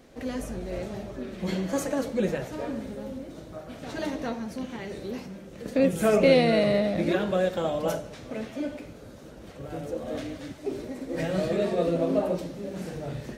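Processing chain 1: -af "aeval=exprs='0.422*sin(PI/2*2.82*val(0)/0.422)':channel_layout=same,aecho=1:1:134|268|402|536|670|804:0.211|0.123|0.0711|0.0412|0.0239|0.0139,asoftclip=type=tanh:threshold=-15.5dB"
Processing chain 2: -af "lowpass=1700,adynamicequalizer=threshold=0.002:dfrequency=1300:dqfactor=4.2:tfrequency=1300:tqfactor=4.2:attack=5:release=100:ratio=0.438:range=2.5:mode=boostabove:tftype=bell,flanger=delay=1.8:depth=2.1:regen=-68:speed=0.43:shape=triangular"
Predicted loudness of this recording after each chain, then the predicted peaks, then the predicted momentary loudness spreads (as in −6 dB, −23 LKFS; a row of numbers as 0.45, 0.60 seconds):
−22.0, −33.0 LKFS; −15.5, −13.5 dBFS; 9, 17 LU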